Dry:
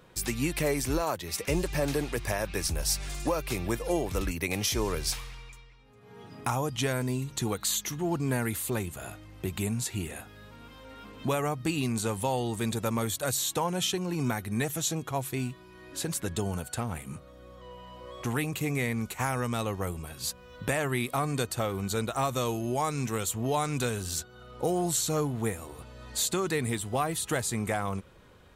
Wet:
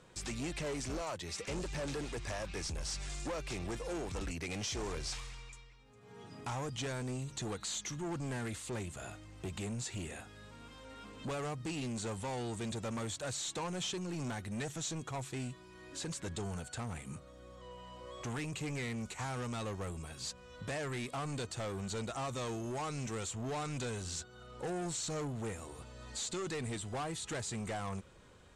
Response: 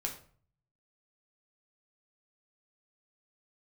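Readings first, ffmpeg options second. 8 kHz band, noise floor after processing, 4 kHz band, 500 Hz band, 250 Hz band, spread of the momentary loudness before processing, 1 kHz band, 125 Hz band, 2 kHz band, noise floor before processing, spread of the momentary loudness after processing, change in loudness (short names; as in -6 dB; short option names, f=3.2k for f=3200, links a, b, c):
-9.5 dB, -56 dBFS, -7.5 dB, -9.5 dB, -9.0 dB, 12 LU, -10.0 dB, -8.5 dB, -9.0 dB, -52 dBFS, 11 LU, -9.5 dB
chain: -filter_complex "[0:a]asoftclip=type=tanh:threshold=-31dB,acrossover=split=6200[a][b];[b]acompressor=threshold=-53dB:ratio=4:attack=1:release=60[c];[a][c]amix=inputs=2:normalize=0,lowpass=f=7.9k:t=q:w=2.4,volume=-4dB"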